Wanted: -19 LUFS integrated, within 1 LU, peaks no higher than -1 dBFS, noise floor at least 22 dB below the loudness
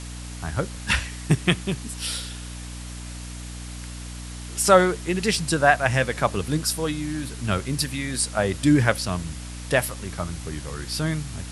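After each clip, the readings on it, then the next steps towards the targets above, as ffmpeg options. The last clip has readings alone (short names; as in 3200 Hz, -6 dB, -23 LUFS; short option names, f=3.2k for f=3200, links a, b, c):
hum 60 Hz; harmonics up to 300 Hz; hum level -33 dBFS; noise floor -36 dBFS; noise floor target -46 dBFS; loudness -24.0 LUFS; peak -2.5 dBFS; loudness target -19.0 LUFS
-> -af "bandreject=f=60:t=h:w=4,bandreject=f=120:t=h:w=4,bandreject=f=180:t=h:w=4,bandreject=f=240:t=h:w=4,bandreject=f=300:t=h:w=4"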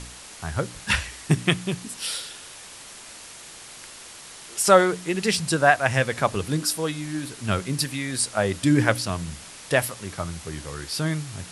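hum none; noise floor -43 dBFS; noise floor target -46 dBFS
-> -af "afftdn=nr=6:nf=-43"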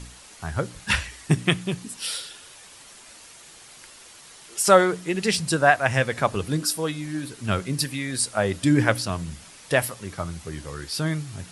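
noise floor -47 dBFS; loudness -24.0 LUFS; peak -3.5 dBFS; loudness target -19.0 LUFS
-> -af "volume=5dB,alimiter=limit=-1dB:level=0:latency=1"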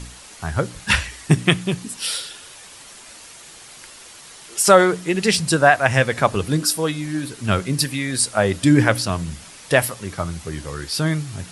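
loudness -19.5 LUFS; peak -1.0 dBFS; noise floor -42 dBFS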